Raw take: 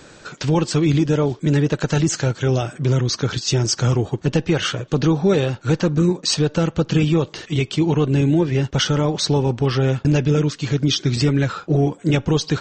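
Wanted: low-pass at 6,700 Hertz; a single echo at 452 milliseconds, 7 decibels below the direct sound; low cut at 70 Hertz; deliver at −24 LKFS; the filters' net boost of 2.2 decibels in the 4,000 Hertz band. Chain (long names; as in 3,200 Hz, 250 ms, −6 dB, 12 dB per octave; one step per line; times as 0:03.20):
high-pass filter 70 Hz
low-pass filter 6,700 Hz
parametric band 4,000 Hz +3.5 dB
single-tap delay 452 ms −7 dB
level −5.5 dB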